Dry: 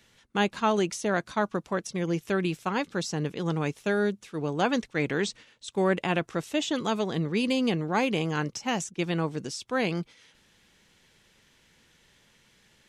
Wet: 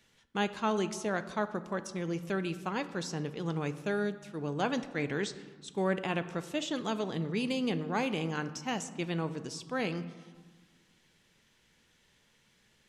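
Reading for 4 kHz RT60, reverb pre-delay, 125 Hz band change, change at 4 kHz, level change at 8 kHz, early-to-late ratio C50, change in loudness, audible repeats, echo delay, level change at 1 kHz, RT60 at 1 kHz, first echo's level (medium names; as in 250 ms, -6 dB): 0.85 s, 4 ms, -5.0 dB, -6.0 dB, -6.0 dB, 13.5 dB, -5.5 dB, no echo, no echo, -5.5 dB, 1.6 s, no echo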